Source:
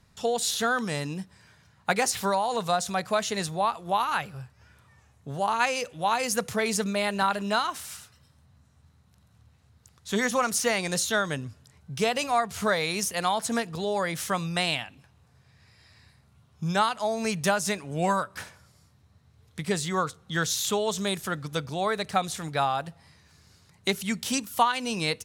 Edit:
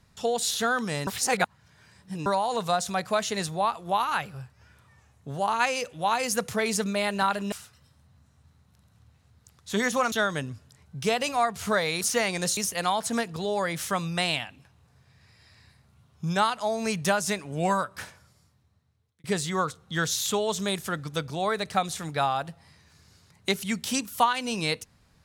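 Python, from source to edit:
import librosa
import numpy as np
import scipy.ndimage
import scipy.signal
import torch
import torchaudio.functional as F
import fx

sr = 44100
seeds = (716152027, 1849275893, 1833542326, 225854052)

y = fx.edit(x, sr, fx.reverse_span(start_s=1.07, length_s=1.19),
    fx.cut(start_s=7.52, length_s=0.39),
    fx.move(start_s=10.51, length_s=0.56, to_s=12.96),
    fx.fade_out_span(start_s=18.43, length_s=1.2), tone=tone)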